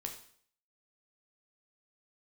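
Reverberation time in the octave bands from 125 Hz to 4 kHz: 0.55 s, 0.55 s, 0.55 s, 0.55 s, 0.55 s, 0.55 s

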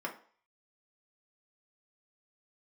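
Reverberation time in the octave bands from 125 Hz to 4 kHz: 0.30 s, 0.35 s, 0.45 s, 0.50 s, 0.45 s, 0.45 s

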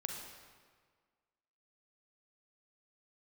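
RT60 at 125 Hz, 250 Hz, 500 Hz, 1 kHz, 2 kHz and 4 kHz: 1.6 s, 1.7 s, 1.7 s, 1.7 s, 1.5 s, 1.2 s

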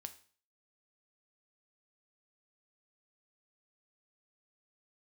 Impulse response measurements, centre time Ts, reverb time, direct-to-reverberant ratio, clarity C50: 7 ms, 0.45 s, 8.5 dB, 14.5 dB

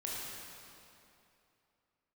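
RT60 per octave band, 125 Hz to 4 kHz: 2.8 s, 2.7 s, 2.8 s, 2.8 s, 2.5 s, 2.2 s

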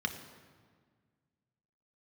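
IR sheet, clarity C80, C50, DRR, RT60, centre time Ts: 11.0 dB, 9.5 dB, 5.0 dB, 1.7 s, 19 ms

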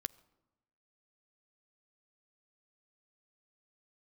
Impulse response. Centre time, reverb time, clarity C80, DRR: 2 ms, 1.0 s, 23.0 dB, 15.5 dB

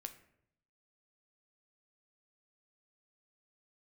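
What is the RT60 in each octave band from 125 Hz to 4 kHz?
1.0 s, 0.85 s, 0.80 s, 0.65 s, 0.60 s, 0.45 s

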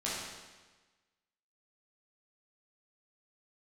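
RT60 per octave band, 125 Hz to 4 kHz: 1.3 s, 1.3 s, 1.3 s, 1.3 s, 1.3 s, 1.2 s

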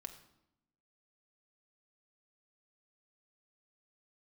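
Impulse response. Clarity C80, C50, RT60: 13.0 dB, 11.0 dB, 0.80 s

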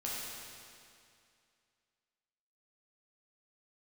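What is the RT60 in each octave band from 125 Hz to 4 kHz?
2.4 s, 2.4 s, 2.4 s, 2.4 s, 2.4 s, 2.3 s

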